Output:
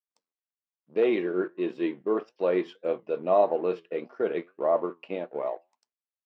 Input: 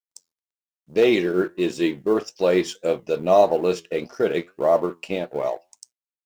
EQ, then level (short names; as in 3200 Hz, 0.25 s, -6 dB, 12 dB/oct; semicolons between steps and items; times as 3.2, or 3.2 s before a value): HPF 240 Hz 12 dB/oct; air absorption 430 m; bell 1100 Hz +3.5 dB 0.25 oct; -4.5 dB